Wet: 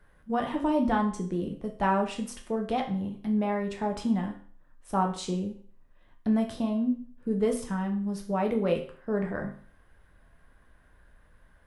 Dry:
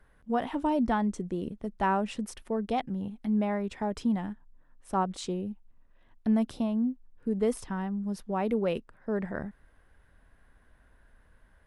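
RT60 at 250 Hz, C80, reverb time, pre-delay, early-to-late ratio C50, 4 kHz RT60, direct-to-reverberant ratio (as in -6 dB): 0.45 s, 13.5 dB, 0.45 s, 8 ms, 9.5 dB, 0.45 s, 2.0 dB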